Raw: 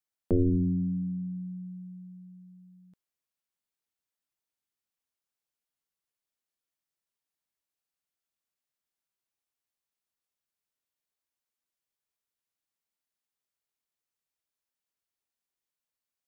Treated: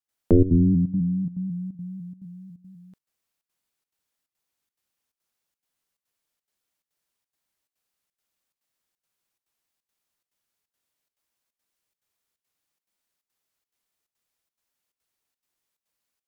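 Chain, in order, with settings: trance gate ".xxxx.xxxx" 176 bpm -12 dB; vibrato with a chosen wave saw up 4 Hz, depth 100 cents; trim +8.5 dB

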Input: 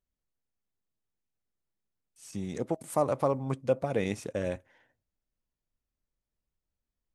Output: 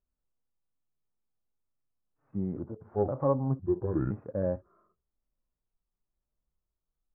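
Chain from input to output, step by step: pitch shift switched off and on -6.5 st, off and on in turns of 513 ms; in parallel at -3 dB: hard clipper -22 dBFS, distortion -14 dB; on the sum: harmonic-percussive split percussive -15 dB; steep low-pass 1.4 kHz 36 dB/octave

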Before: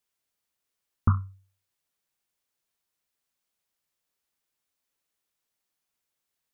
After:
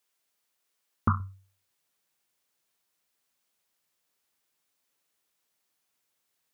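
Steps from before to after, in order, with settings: high-pass 300 Hz 6 dB/octave, from 1.20 s 120 Hz; trim +5 dB

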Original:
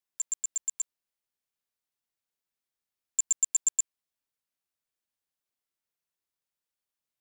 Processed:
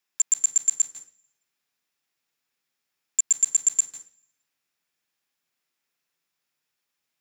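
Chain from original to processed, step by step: peak limiter -22.5 dBFS, peak gain reduction 5.5 dB; reverberation RT60 0.40 s, pre-delay 149 ms, DRR 7 dB; trim +5.5 dB

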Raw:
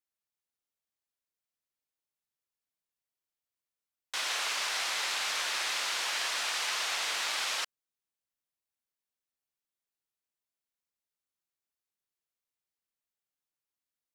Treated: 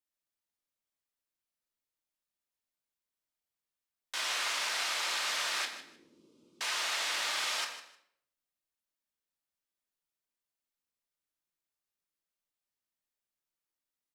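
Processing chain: 5.65–6.61 s: inverse Chebyshev low-pass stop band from 670 Hz, stop band 40 dB; feedback delay 153 ms, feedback 20%, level -13.5 dB; on a send at -3 dB: reverberation RT60 0.65 s, pre-delay 3 ms; on the sum: trim -2.5 dB

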